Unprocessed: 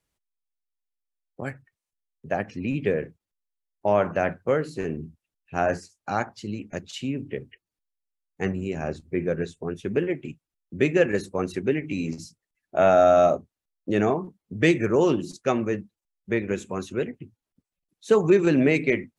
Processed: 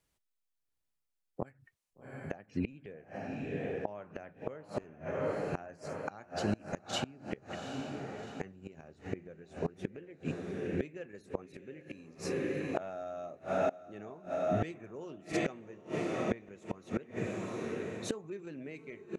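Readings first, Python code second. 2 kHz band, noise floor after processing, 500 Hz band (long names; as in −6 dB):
−13.5 dB, −83 dBFS, −14.0 dB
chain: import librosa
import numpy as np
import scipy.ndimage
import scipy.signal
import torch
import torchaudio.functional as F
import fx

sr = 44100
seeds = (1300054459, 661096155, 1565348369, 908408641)

y = fx.echo_diffused(x, sr, ms=769, feedback_pct=54, wet_db=-11.0)
y = fx.gate_flip(y, sr, shuts_db=-20.0, range_db=-25)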